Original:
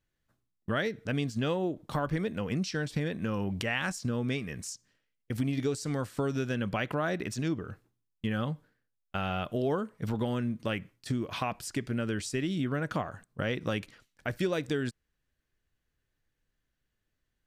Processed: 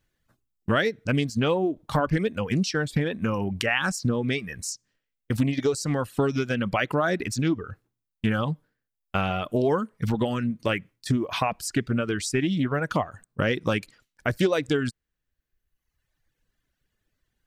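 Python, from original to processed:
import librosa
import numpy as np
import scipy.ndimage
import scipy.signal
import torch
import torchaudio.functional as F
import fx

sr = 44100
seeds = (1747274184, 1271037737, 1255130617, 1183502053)

y = fx.dereverb_blind(x, sr, rt60_s=1.3)
y = fx.doppler_dist(y, sr, depth_ms=0.17)
y = y * 10.0 ** (8.0 / 20.0)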